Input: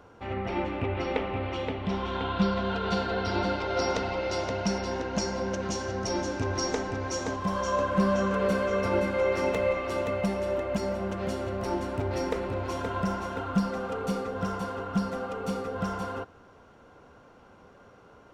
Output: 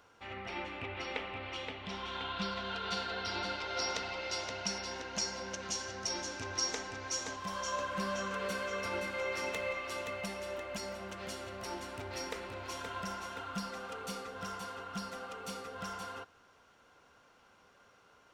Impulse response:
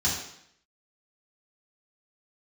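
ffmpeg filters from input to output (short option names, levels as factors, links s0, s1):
-af "tiltshelf=f=1100:g=-8.5,volume=0.422"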